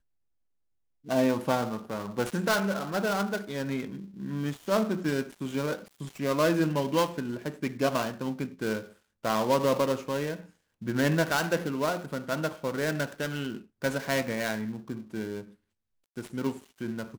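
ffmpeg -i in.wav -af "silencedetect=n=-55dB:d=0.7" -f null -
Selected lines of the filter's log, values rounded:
silence_start: 0.00
silence_end: 1.04 | silence_duration: 1.04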